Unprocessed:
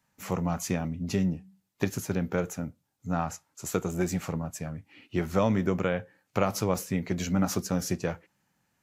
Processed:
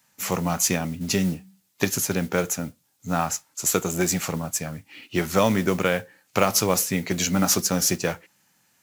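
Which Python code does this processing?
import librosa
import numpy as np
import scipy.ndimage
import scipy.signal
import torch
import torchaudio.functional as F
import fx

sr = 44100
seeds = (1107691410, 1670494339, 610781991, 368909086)

y = fx.highpass(x, sr, hz=140.0, slope=6)
y = fx.high_shelf(y, sr, hz=2400.0, db=10.5)
y = fx.mod_noise(y, sr, seeds[0], snr_db=21)
y = F.gain(torch.from_numpy(y), 5.0).numpy()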